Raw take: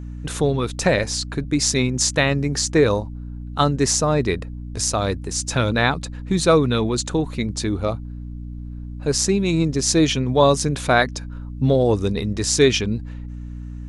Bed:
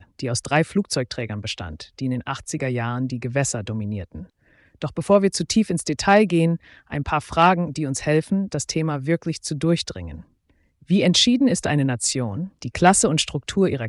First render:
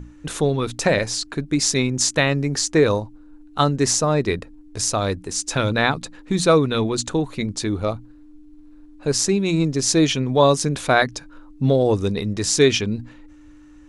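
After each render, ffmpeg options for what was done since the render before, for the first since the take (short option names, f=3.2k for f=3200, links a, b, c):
-af "bandreject=f=60:t=h:w=6,bandreject=f=120:t=h:w=6,bandreject=f=180:t=h:w=6,bandreject=f=240:t=h:w=6"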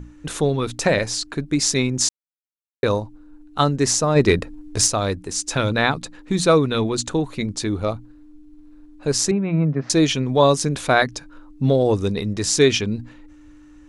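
-filter_complex "[0:a]asplit=3[a][b][c];[a]afade=t=out:st=4.15:d=0.02[d];[b]acontrast=72,afade=t=in:st=4.15:d=0.02,afade=t=out:st=4.86:d=0.02[e];[c]afade=t=in:st=4.86:d=0.02[f];[d][e][f]amix=inputs=3:normalize=0,asettb=1/sr,asplit=3[g][h][i];[g]atrim=end=9.314[j];[h]atrim=start=9.31:end=9.9,asetpts=PTS-STARTPTS,afade=t=in:d=0.004:c=qsin,afade=t=out:st=0.586:d=0.004:c=qsin,highpass=150,equalizer=f=150:t=q:w=4:g=8,equalizer=f=350:t=q:w=4:g=-8,equalizer=f=650:t=q:w=4:g=6,equalizer=f=1.3k:t=q:w=4:g=3,lowpass=f=2k:w=0.5412,lowpass=f=2k:w=1.3066[k];[i]atrim=start=9.896[l];[j][k]acrossfade=d=0.004:c1=hsin:c2=qsin[m];[m][l]acrossfade=d=0.004:c1=qsin:c2=hsin,asplit=3[n][o][p];[n]atrim=end=2.09,asetpts=PTS-STARTPTS,afade=t=out:st=2.086:d=0.004:c=hsin[q];[o]atrim=start=2.09:end=2.83,asetpts=PTS-STARTPTS,volume=0[r];[p]atrim=start=2.83,asetpts=PTS-STARTPTS,afade=t=in:d=0.004:c=hsin[s];[q][r][s]concat=n=3:v=0:a=1"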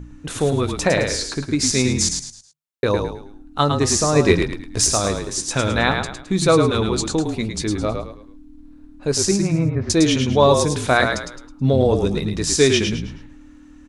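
-filter_complex "[0:a]asplit=2[a][b];[b]adelay=16,volume=-14dB[c];[a][c]amix=inputs=2:normalize=0,asplit=5[d][e][f][g][h];[e]adelay=107,afreqshift=-38,volume=-5.5dB[i];[f]adelay=214,afreqshift=-76,volume=-14.9dB[j];[g]adelay=321,afreqshift=-114,volume=-24.2dB[k];[h]adelay=428,afreqshift=-152,volume=-33.6dB[l];[d][i][j][k][l]amix=inputs=5:normalize=0"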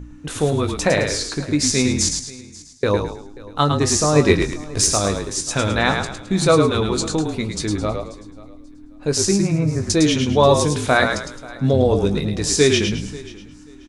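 -filter_complex "[0:a]asplit=2[a][b];[b]adelay=20,volume=-11dB[c];[a][c]amix=inputs=2:normalize=0,aecho=1:1:536|1072:0.0891|0.0187"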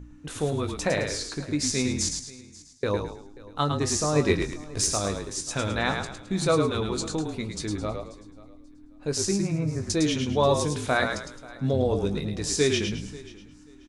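-af "volume=-8dB"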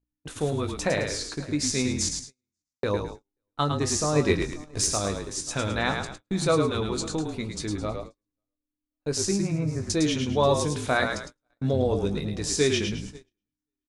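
-af "agate=range=-40dB:threshold=-37dB:ratio=16:detection=peak"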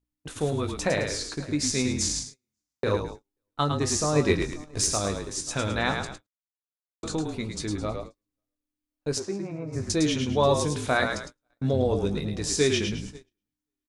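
-filter_complex "[0:a]asplit=3[a][b][c];[a]afade=t=out:st=2.08:d=0.02[d];[b]asplit=2[e][f];[f]adelay=37,volume=-3dB[g];[e][g]amix=inputs=2:normalize=0,afade=t=in:st=2.08:d=0.02,afade=t=out:st=2.95:d=0.02[h];[c]afade=t=in:st=2.95:d=0.02[i];[d][h][i]amix=inputs=3:normalize=0,asplit=3[j][k][l];[j]afade=t=out:st=9.18:d=0.02[m];[k]bandpass=f=700:t=q:w=0.75,afade=t=in:st=9.18:d=0.02,afade=t=out:st=9.72:d=0.02[n];[l]afade=t=in:st=9.72:d=0.02[o];[m][n][o]amix=inputs=3:normalize=0,asplit=3[p][q][r];[p]atrim=end=6.27,asetpts=PTS-STARTPTS,afade=t=out:st=6.266:d=0.004:c=hsin[s];[q]atrim=start=6.27:end=7.03,asetpts=PTS-STARTPTS,volume=0[t];[r]atrim=start=7.03,asetpts=PTS-STARTPTS,afade=t=in:d=0.004:c=hsin[u];[s][t][u]concat=n=3:v=0:a=1"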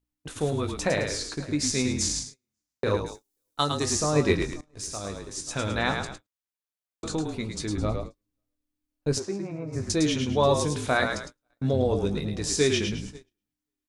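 -filter_complex "[0:a]asettb=1/sr,asplit=3[a][b][c];[a]atrim=end=3.064[d];[b]atrim=start=3.06:end=3.86,asetpts=PTS-STARTPTS,afade=t=in:d=0.004:c=qsin,afade=t=out:st=0.796:d=0.004:c=qsin,bass=f=250:g=-5,treble=f=4k:g=14[e];[c]atrim=start=3.856[f];[d][e]acrossfade=d=0.004:c1=hsin:c2=qsin[g];[g][f]acrossfade=d=0.004:c1=qsin:c2=hsin,asettb=1/sr,asplit=3[h][i][j];[h]atrim=end=7.774[k];[i]atrim=start=7.77:end=9.19,asetpts=PTS-STARTPTS,afade=t=in:d=0.004:c=qsin,afade=t=out:st=1.416:d=0.004:c=qsin,lowshelf=f=250:g=7.5[l];[j]atrim=start=9.186[m];[k][l]acrossfade=d=0.004:c1=hsin:c2=qsin[n];[n][m]acrossfade=d=0.004:c1=qsin:c2=hsin,asplit=2[o][p];[o]atrim=end=4.61,asetpts=PTS-STARTPTS,afade=t=out:st=4.606:d=0.004:c=hsin:silence=0.11885[q];[p]atrim=start=4.61,asetpts=PTS-STARTPTS,afade=t=in:d=1.17:silence=0.11885[r];[q][r]concat=n=2:v=0:a=1"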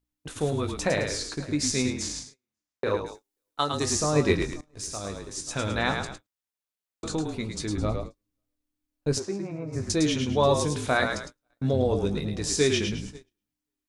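-filter_complex "[0:a]asettb=1/sr,asplit=3[a][b][c];[a]atrim=end=1.904[d];[b]atrim=start=1.9:end=3.74,asetpts=PTS-STARTPTS,afade=t=in:d=0.004:c=qsin,afade=t=out:st=1.836:d=0.004:c=qsin,bass=f=250:g=-7,treble=f=4k:g=-7[e];[c]atrim=start=3.736[f];[d][e]acrossfade=d=0.004:c1=hsin:c2=qsin[g];[g][f]acrossfade=d=0.004:c1=qsin:c2=hsin"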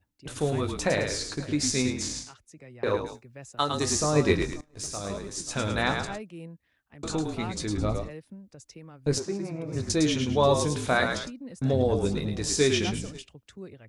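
-filter_complex "[1:a]volume=-23.5dB[a];[0:a][a]amix=inputs=2:normalize=0"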